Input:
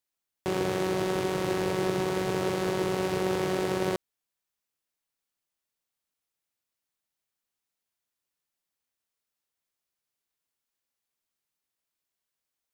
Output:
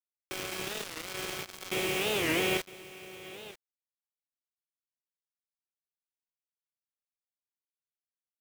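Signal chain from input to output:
low-pass that shuts in the quiet parts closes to 990 Hz, open at −24 dBFS
mains-hum notches 60/120/180/240/300 Hz
noise gate with hold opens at −25 dBFS
flat-topped bell 2,700 Hz +14 dB 1 octave
time stretch by phase vocoder 0.66×
sample-and-hold tremolo, depth 80%
bit-depth reduction 6 bits, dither none
single-tap delay 958 ms −17 dB
wow of a warped record 45 rpm, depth 250 cents
level +1.5 dB

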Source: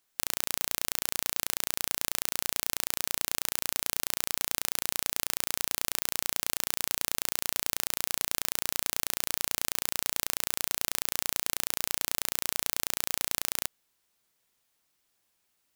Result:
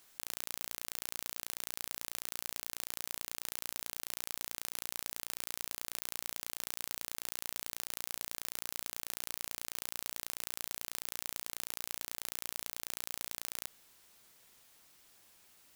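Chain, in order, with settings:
compressor whose output falls as the input rises −43 dBFS, ratio −1
level +1 dB

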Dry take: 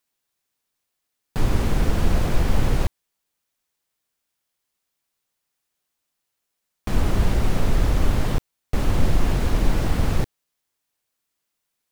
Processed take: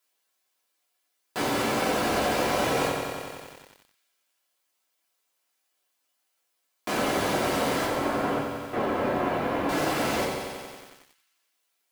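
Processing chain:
high-pass filter 400 Hz 12 dB per octave
reverb reduction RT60 0.76 s
0:07.85–0:09.69: low-pass filter 1,800 Hz 12 dB per octave
feedback echo with a high-pass in the loop 81 ms, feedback 77%, high-pass 580 Hz, level −13 dB
rectangular room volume 240 cubic metres, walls furnished, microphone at 3 metres
feedback echo at a low word length 91 ms, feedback 80%, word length 8 bits, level −7 dB

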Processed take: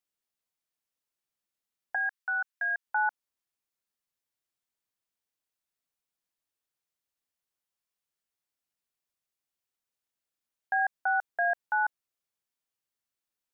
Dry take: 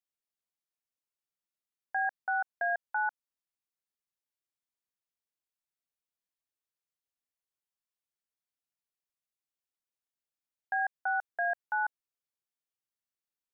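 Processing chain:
0:01.95–0:02.87: high-pass filter 1,100 Hz 24 dB per octave
level +3.5 dB

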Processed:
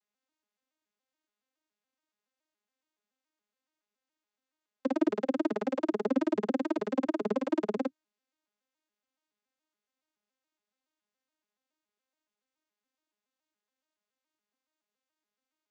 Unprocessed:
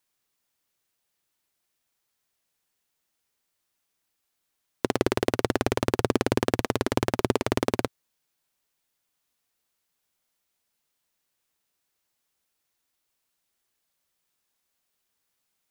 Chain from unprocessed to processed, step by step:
vocoder with an arpeggio as carrier major triad, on G#3, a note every 141 ms
low-shelf EQ 220 Hz −10 dB

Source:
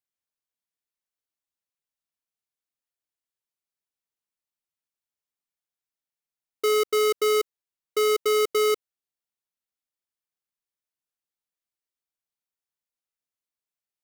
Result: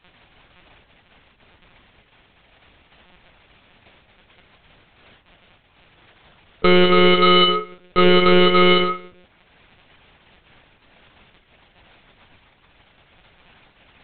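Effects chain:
noise gate with hold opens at −23 dBFS
in parallel at −6.5 dB: sample-and-hold swept by an LFO 9×, swing 160% 0.64 Hz
on the sum: surface crackle 77 per second −38 dBFS
rectangular room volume 54 cubic metres, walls mixed, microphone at 3 metres
one-pitch LPC vocoder at 8 kHz 180 Hz
boost into a limiter −0.5 dB
level −1 dB

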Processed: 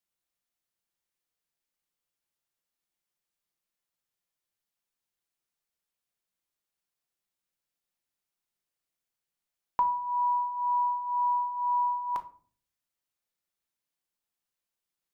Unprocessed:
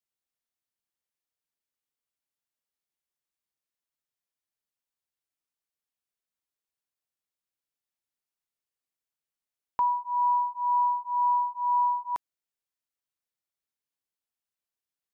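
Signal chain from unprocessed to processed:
rectangular room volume 370 cubic metres, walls furnished, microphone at 0.84 metres
level +2 dB

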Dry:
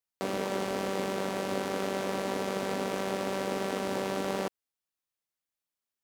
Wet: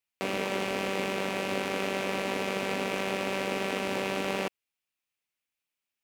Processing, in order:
parametric band 2,500 Hz +10.5 dB 0.68 octaves

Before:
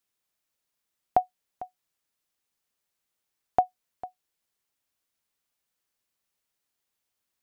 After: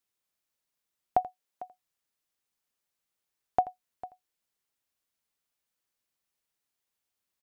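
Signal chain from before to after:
0:01.21–0:01.62: high-pass filter 190 Hz
single-tap delay 83 ms −18 dB
level −3 dB

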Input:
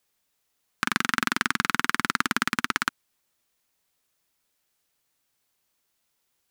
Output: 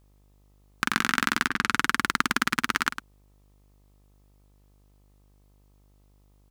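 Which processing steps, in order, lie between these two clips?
0:01.47–0:01.99: low-pass that shuts in the quiet parts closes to 570 Hz, open at −24 dBFS
slap from a distant wall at 18 metres, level −10 dB
hum with harmonics 50 Hz, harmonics 26, −60 dBFS −7 dB per octave

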